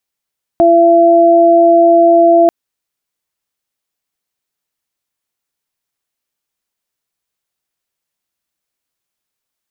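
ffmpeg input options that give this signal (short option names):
-f lavfi -i "aevalsrc='0.299*sin(2*PI*338*t)+0.531*sin(2*PI*676*t)':d=1.89:s=44100"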